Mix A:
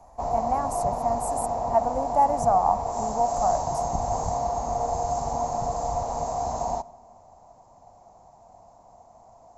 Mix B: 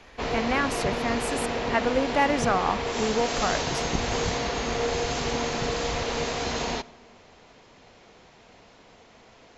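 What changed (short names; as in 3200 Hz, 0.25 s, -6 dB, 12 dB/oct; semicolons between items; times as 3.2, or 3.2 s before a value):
speech: send on; master: remove EQ curve 100 Hz 0 dB, 450 Hz -12 dB, 700 Hz +9 dB, 1000 Hz +2 dB, 1500 Hz -19 dB, 3200 Hz -28 dB, 7700 Hz +2 dB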